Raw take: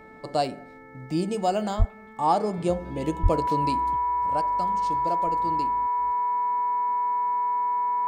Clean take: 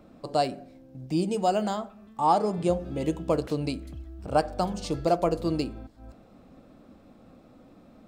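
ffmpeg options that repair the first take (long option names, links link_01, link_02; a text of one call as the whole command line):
ffmpeg -i in.wav -filter_complex "[0:a]bandreject=frequency=437.7:width_type=h:width=4,bandreject=frequency=875.4:width_type=h:width=4,bandreject=frequency=1313.1:width_type=h:width=4,bandreject=frequency=1750.8:width_type=h:width=4,bandreject=frequency=2188.5:width_type=h:width=4,bandreject=frequency=980:width=30,asplit=3[link_01][link_02][link_03];[link_01]afade=type=out:start_time=1.78:duration=0.02[link_04];[link_02]highpass=frequency=140:width=0.5412,highpass=frequency=140:width=1.3066,afade=type=in:start_time=1.78:duration=0.02,afade=type=out:start_time=1.9:duration=0.02[link_05];[link_03]afade=type=in:start_time=1.9:duration=0.02[link_06];[link_04][link_05][link_06]amix=inputs=3:normalize=0,asplit=3[link_07][link_08][link_09];[link_07]afade=type=out:start_time=3.22:duration=0.02[link_10];[link_08]highpass=frequency=140:width=0.5412,highpass=frequency=140:width=1.3066,afade=type=in:start_time=3.22:duration=0.02,afade=type=out:start_time=3.34:duration=0.02[link_11];[link_09]afade=type=in:start_time=3.34:duration=0.02[link_12];[link_10][link_11][link_12]amix=inputs=3:normalize=0,asetnsamples=nb_out_samples=441:pad=0,asendcmd='3.96 volume volume 8dB',volume=0dB" out.wav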